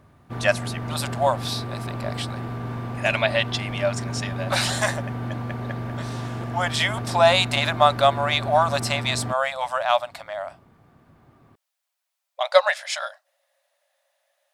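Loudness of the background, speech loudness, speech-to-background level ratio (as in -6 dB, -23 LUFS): -31.0 LUFS, -23.0 LUFS, 8.0 dB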